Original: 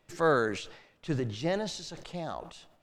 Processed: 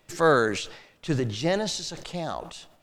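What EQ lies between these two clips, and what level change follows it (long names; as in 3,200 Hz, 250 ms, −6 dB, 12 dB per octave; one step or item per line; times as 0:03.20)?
high-shelf EQ 3,900 Hz +6 dB
+5.0 dB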